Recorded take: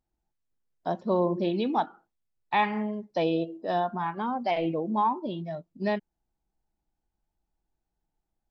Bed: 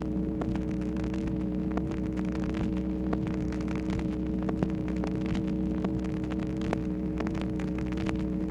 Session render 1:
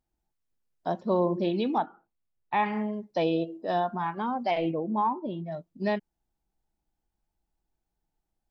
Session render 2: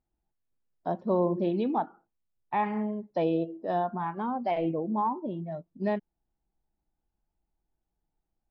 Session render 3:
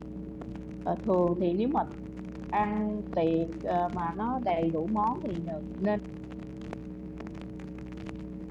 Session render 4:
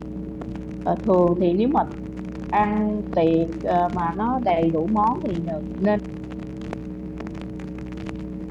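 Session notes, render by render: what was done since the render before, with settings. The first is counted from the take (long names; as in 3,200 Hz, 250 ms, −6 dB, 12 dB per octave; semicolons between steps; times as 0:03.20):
0:01.78–0:02.66: high-frequency loss of the air 350 metres; 0:04.71–0:05.52: high-frequency loss of the air 340 metres
low-pass filter 1,200 Hz 6 dB per octave
mix in bed −9.5 dB
level +8 dB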